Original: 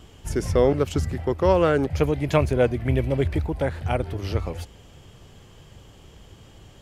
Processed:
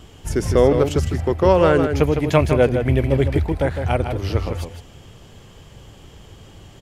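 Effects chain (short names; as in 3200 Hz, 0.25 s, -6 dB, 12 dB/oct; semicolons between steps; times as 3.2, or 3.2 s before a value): outdoor echo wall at 27 m, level -7 dB; gain +4 dB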